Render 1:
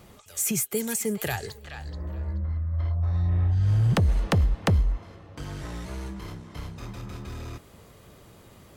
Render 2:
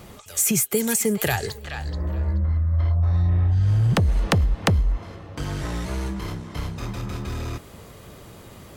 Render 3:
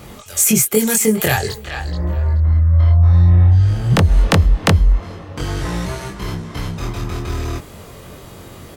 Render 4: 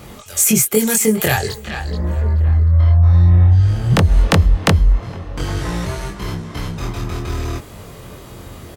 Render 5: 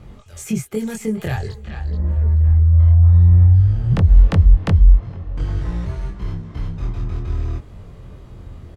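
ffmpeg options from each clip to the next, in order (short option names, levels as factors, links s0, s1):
-af "acompressor=threshold=0.0631:ratio=6,volume=2.37"
-filter_complex "[0:a]asplit=2[s0][s1];[s1]adelay=23,volume=0.794[s2];[s0][s2]amix=inputs=2:normalize=0,volume=1.68"
-filter_complex "[0:a]asplit=2[s0][s1];[s1]adelay=1166,volume=0.126,highshelf=f=4000:g=-26.2[s2];[s0][s2]amix=inputs=2:normalize=0"
-af "aemphasis=mode=reproduction:type=bsi,volume=0.282"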